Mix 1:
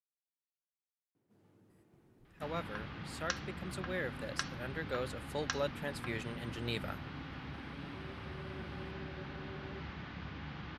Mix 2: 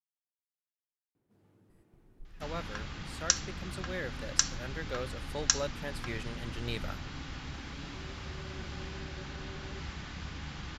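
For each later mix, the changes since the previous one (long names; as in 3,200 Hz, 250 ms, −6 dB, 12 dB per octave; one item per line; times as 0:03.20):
second sound: remove high-frequency loss of the air 290 metres
master: remove high-pass filter 96 Hz 12 dB per octave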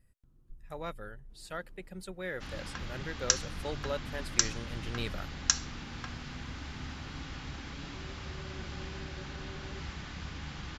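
speech: entry −1.70 s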